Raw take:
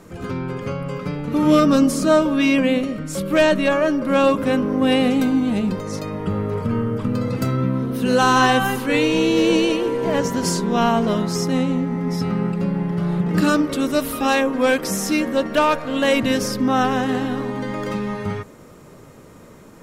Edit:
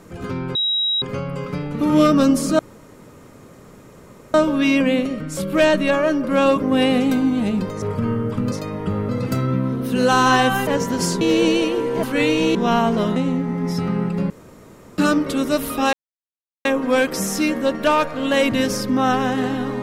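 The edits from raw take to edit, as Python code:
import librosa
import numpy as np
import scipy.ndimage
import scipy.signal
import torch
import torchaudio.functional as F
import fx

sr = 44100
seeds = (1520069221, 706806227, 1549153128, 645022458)

y = fx.edit(x, sr, fx.insert_tone(at_s=0.55, length_s=0.47, hz=3840.0, db=-17.0),
    fx.insert_room_tone(at_s=2.12, length_s=1.75),
    fx.cut(start_s=4.4, length_s=0.32),
    fx.move(start_s=5.92, length_s=0.57, to_s=7.19),
    fx.swap(start_s=8.77, length_s=0.52, other_s=10.11, other_length_s=0.54),
    fx.cut(start_s=11.26, length_s=0.33),
    fx.room_tone_fill(start_s=12.73, length_s=0.68),
    fx.insert_silence(at_s=14.36, length_s=0.72), tone=tone)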